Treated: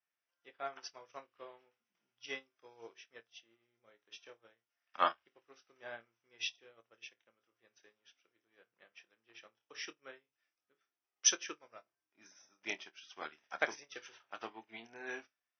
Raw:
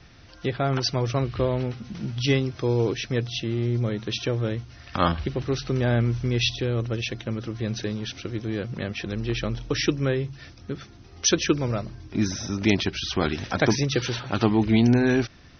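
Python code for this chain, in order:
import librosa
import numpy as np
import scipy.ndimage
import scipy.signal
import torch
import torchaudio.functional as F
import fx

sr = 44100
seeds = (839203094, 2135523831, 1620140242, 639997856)

y = scipy.signal.sosfilt(scipy.signal.butter(2, 760.0, 'highpass', fs=sr, output='sos'), x)
y = fx.peak_eq(y, sr, hz=4200.0, db=-13.5, octaves=0.33)
y = fx.room_flutter(y, sr, wall_m=4.5, rt60_s=0.22)
y = fx.upward_expand(y, sr, threshold_db=-43.0, expansion=2.5)
y = y * 10.0 ** (-2.5 / 20.0)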